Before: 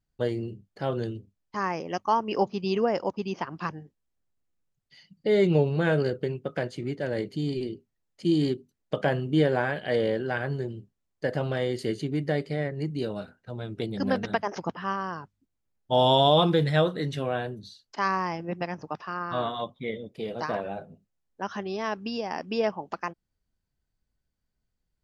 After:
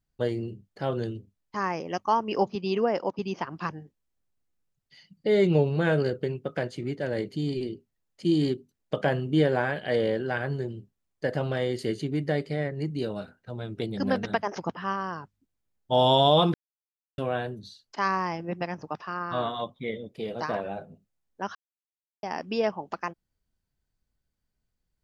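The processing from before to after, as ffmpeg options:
-filter_complex "[0:a]asettb=1/sr,asplit=3[a][b][c];[a]atrim=end=2.554[d];[b]atrim=start=2.55:end=3.19,asetpts=PTS-STARTPTS,afade=t=in:d=0.004:c=qsin,afade=t=out:st=0.636:d=0.004:c=qsin,highpass=160,lowpass=5.6k[e];[c]atrim=start=3.186[f];[d][e]acrossfade=d=0.004:c1=hsin:c2=qsin[g];[g][f]acrossfade=d=0.004:c1=qsin:c2=hsin,asplit=5[h][i][j][k][l];[h]atrim=end=16.54,asetpts=PTS-STARTPTS,afade=t=out:st=16.536:d=0.004:c=hsin[m];[i]atrim=start=16.54:end=17.18,asetpts=PTS-STARTPTS,volume=0[n];[j]atrim=start=17.18:end=21.55,asetpts=PTS-STARTPTS,afade=t=in:d=0.004:c=hsin,afade=t=out:st=4.366:d=0.004:c=hsin[o];[k]atrim=start=21.55:end=22.23,asetpts=PTS-STARTPTS,volume=0[p];[l]atrim=start=22.23,asetpts=PTS-STARTPTS,afade=t=in:d=0.004:c=hsin[q];[m][n][o][p][q]concat=n=5:v=0:a=1"

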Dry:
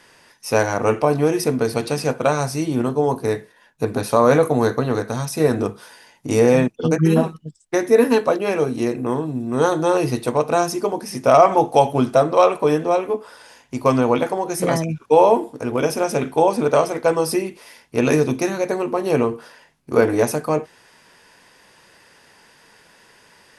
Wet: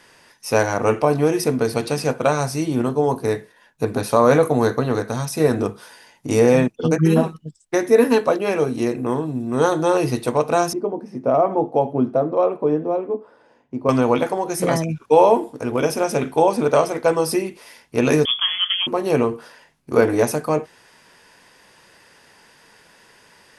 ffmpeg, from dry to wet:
-filter_complex "[0:a]asettb=1/sr,asplit=3[a][b][c];[a]atrim=end=10.734[d];[b]atrim=start=10.73:end=13.89,asetpts=PTS-STARTPTS,afade=t=in:d=0.004:c=qsin,afade=t=out:st=3.156:d=0.004:c=qsin,bandpass=f=280:t=q:w=0.76[e];[c]atrim=start=13.886[f];[d][e]acrossfade=d=0.004:c1=hsin:c2=qsin[g];[g][f]acrossfade=d=0.004:c1=qsin:c2=hsin,asettb=1/sr,asplit=3[h][i][j];[h]atrim=end=18.254[k];[i]atrim=start=18.25:end=18.87,asetpts=PTS-STARTPTS,afade=t=in:d=0.004:c=qsin,afade=t=out:st=0.616:d=0.004:c=qsin,lowpass=f=3.1k:t=q:w=0.5098,lowpass=f=3.1k:t=q:w=0.6013,lowpass=f=3.1k:t=q:w=0.9,lowpass=f=3.1k:t=q:w=2.563,afreqshift=-3600[l];[j]atrim=start=18.866[m];[k][l]acrossfade=d=0.004:c1=hsin:c2=qsin[n];[n][m]acrossfade=d=0.004:c1=qsin:c2=hsin"

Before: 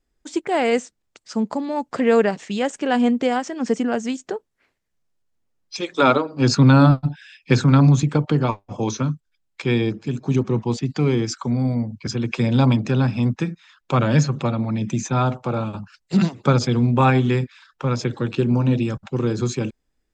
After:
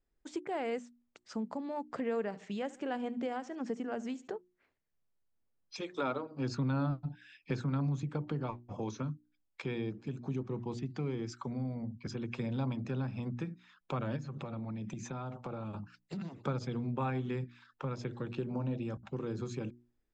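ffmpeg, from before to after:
-filter_complex "[0:a]asettb=1/sr,asplit=3[a][b][c];[a]atrim=end=1.974[d];[b]atrim=start=1.97:end=4.28,asetpts=PTS-STARTPTS,afade=t=in:d=0.004:c=qsin,afade=t=out:st=2.306:d=0.004:c=qsin,aecho=1:1:72|144|216:0.0891|0.0348|0.0136,atrim=end_sample=101871[e];[c]atrim=start=4.276[f];[d][e]acrossfade=d=0.004:c1=hsin:c2=qsin[g];[g][f]acrossfade=d=0.004:c1=qsin:c2=hsin,asplit=3[h][i][j];[h]afade=t=out:st=14.15:d=0.02[k];[i]acompressor=threshold=-25dB:ratio=6:attack=3.2:release=140:knee=1:detection=peak,afade=t=in:st=14.15:d=0.02,afade=t=out:st=16.43:d=0.02[l];[j]afade=t=in:st=16.43:d=0.02[m];[k][l][m]amix=inputs=3:normalize=0,asettb=1/sr,asplit=3[n][o][p];[n]atrim=end=18.474[q];[o]atrim=start=18.47:end=19.02,asetpts=PTS-STARTPTS,afade=t=in:d=0.004:c=qsin,afade=t=out:st=0.546:d=0.004:c=qsin,equalizer=f=660:t=o:w=0.8:g=6[r];[p]atrim=start=19.016[s];[q][r]acrossfade=d=0.004:c1=hsin:c2=qsin[t];[t][s]acrossfade=d=0.004:c1=qsin:c2=hsin,highshelf=f=3.6k:g=-10,bandreject=f=60:t=h:w=6,bandreject=f=120:t=h:w=6,bandreject=f=180:t=h:w=6,bandreject=f=240:t=h:w=6,bandreject=f=300:t=h:w=6,bandreject=f=360:t=h:w=6,acompressor=threshold=-32dB:ratio=2,volume=-7.5dB"

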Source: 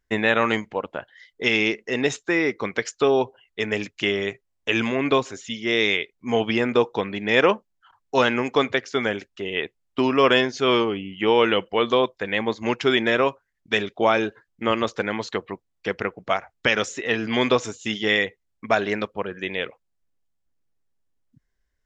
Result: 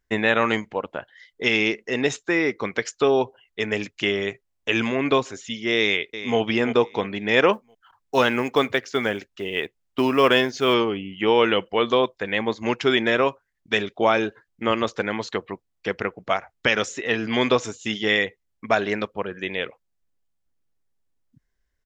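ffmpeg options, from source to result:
-filter_complex "[0:a]asplit=2[a][b];[b]afade=t=in:st=5.79:d=0.01,afade=t=out:st=6.38:d=0.01,aecho=0:1:340|680|1020|1360:0.251189|0.100475|0.0401902|0.0160761[c];[a][c]amix=inputs=2:normalize=0,asettb=1/sr,asplit=3[d][e][f];[d]atrim=end=7.534[g];[e]atrim=start=7.53:end=10.74,asetpts=PTS-STARTPTS,afade=t=in:d=0.004:c=qsin,afade=t=out:st=3.206:d=0.004:c=qsin,acrusher=bits=8:mode=log:mix=0:aa=0.000001[h];[f]atrim=start=10.736[i];[g][h]acrossfade=d=0.004:c1=hsin:c2=qsin[j];[j][i]acrossfade=d=0.004:c1=qsin:c2=hsin"

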